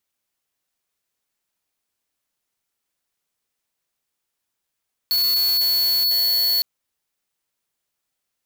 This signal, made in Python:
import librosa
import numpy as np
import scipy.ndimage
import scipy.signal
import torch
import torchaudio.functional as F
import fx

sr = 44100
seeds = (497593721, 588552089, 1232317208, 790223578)

y = fx.tone(sr, length_s=1.51, wave='square', hz=4410.0, level_db=-19.0)